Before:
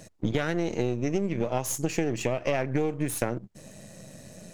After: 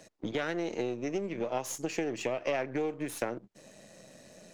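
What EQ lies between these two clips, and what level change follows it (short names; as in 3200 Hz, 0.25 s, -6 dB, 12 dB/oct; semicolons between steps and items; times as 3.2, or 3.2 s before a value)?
three-band isolator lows -13 dB, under 240 Hz, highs -14 dB, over 6300 Hz; high shelf 10000 Hz +9.5 dB; -3.5 dB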